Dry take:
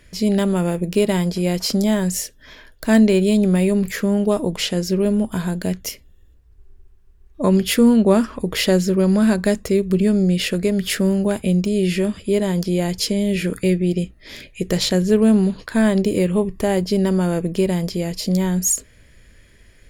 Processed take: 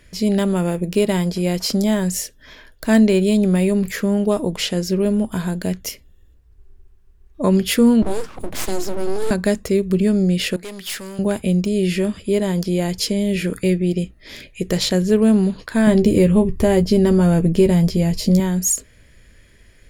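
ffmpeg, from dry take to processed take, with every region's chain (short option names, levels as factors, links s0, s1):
-filter_complex "[0:a]asettb=1/sr,asplit=3[s0][s1][s2];[s0]atrim=end=8.024[s3];[s1]atrim=start=8.02:end=9.31,asetpts=PTS-STARTPTS,afade=t=in:d=0.004:c=qsin,afade=t=out:st=1.286:d=0.004:c=qsin,equalizer=f=130:t=o:w=0.34:g=15,acrossover=split=220|3000[s4][s5][s6];[s5]acompressor=threshold=0.02:ratio=2:attack=3.2:release=140:knee=2.83:detection=peak[s7];[s4][s7][s6]amix=inputs=3:normalize=0,aeval=exprs='abs(val(0))':c=same[s8];[s2]atrim=start=9.306[s9];[s3][s8]acrossfade=d=0.004:c1=hsin:c2=qsin[s10];[s10][s9]acrossfade=d=0.004:c1=qsin:c2=hsin,asettb=1/sr,asplit=3[s11][s12][s13];[s11]atrim=end=10.564[s14];[s12]atrim=start=10.56:end=11.19,asetpts=PTS-STARTPTS,afade=t=in:d=0.004:c=qsin,afade=t=out:st=0.626:d=0.004:c=qsin,highpass=f=880:p=1,aeval=exprs='(tanh(28.2*val(0)+0.35)-tanh(0.35))/28.2':c=same,adynamicequalizer=threshold=0.00501:dfrequency=1900:dqfactor=0.7:tfrequency=1900:tqfactor=0.7:attack=5:release=100:ratio=0.375:range=2.5:mode=boostabove:tftype=highshelf[s15];[s13]atrim=start=11.186[s16];[s14][s15]acrossfade=d=0.004:c1=hsin:c2=qsin[s17];[s17][s16]acrossfade=d=0.004:c1=qsin:c2=hsin,asettb=1/sr,asplit=3[s18][s19][s20];[s18]atrim=end=15.874[s21];[s19]atrim=start=15.87:end=18.4,asetpts=PTS-STARTPTS,afade=t=in:d=0.004:c=qsin,afade=t=out:st=2.526:d=0.004:c=qsin,lowshelf=f=220:g=11,asplit=2[s22][s23];[s23]adelay=13,volume=0.398[s24];[s22][s24]amix=inputs=2:normalize=0,atrim=end_sample=111573[s25];[s20]atrim=start=18.396[s26];[s21][s25]acrossfade=d=0.004:c1=hsin:c2=qsin[s27];[s27][s26]acrossfade=d=0.004:c1=qsin:c2=hsin"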